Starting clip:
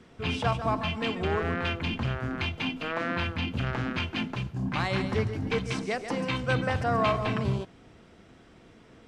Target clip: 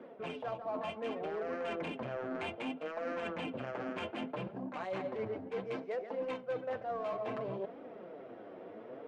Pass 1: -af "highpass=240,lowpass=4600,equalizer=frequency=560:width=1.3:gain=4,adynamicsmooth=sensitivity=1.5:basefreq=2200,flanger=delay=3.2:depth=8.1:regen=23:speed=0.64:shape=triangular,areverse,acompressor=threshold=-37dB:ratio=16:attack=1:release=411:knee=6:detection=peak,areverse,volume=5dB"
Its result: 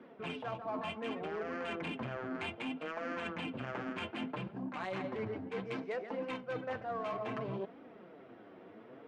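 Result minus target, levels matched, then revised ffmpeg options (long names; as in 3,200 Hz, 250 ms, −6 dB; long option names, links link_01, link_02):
500 Hz band −2.5 dB
-af "highpass=240,lowpass=4600,equalizer=frequency=560:width=1.3:gain=13.5,adynamicsmooth=sensitivity=1.5:basefreq=2200,flanger=delay=3.2:depth=8.1:regen=23:speed=0.64:shape=triangular,areverse,acompressor=threshold=-37dB:ratio=16:attack=1:release=411:knee=6:detection=peak,areverse,volume=5dB"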